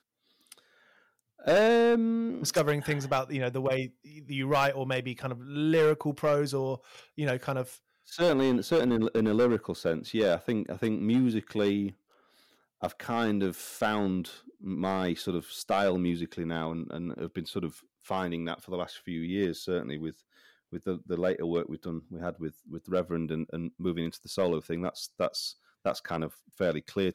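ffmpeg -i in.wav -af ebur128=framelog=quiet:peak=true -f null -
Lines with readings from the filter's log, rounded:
Integrated loudness:
  I:         -30.1 LUFS
  Threshold: -40.7 LUFS
Loudness range:
  LRA:         7.0 LU
  Threshold: -50.7 LUFS
  LRA low:   -34.7 LUFS
  LRA high:  -27.6 LUFS
True peak:
  Peak:      -17.9 dBFS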